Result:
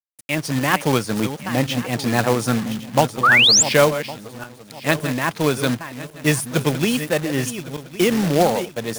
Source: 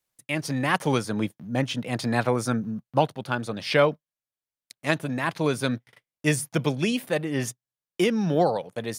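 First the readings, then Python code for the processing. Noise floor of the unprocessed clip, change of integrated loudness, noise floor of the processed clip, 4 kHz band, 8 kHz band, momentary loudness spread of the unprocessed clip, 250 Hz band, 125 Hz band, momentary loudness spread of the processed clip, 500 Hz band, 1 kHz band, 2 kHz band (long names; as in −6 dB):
below −85 dBFS, +7.5 dB, −45 dBFS, +13.5 dB, +14.5 dB, 8 LU, +5.0 dB, +5.0 dB, 15 LU, +5.0 dB, +6.5 dB, +9.5 dB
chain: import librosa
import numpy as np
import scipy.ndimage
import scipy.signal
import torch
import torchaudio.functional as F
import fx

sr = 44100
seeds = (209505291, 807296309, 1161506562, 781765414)

y = fx.reverse_delay_fb(x, sr, ms=555, feedback_pct=48, wet_db=-11.0)
y = fx.quant_companded(y, sr, bits=4)
y = fx.spec_paint(y, sr, seeds[0], shape='rise', start_s=3.23, length_s=0.4, low_hz=1100.0, high_hz=7900.0, level_db=-17.0)
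y = y * librosa.db_to_amplitude(4.5)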